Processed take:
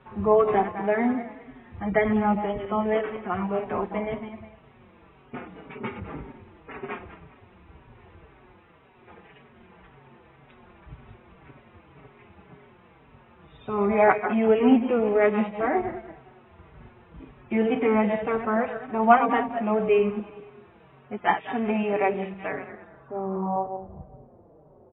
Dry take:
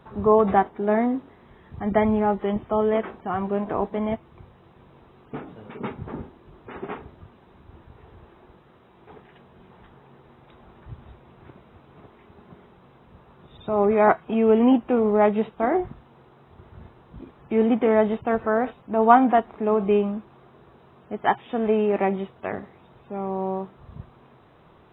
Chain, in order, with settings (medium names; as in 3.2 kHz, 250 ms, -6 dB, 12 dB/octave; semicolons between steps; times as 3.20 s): backward echo that repeats 102 ms, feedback 54%, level -9 dB; low-pass sweep 2.5 kHz -> 580 Hz, 22.45–24.20 s; endless flanger 4.9 ms -1.9 Hz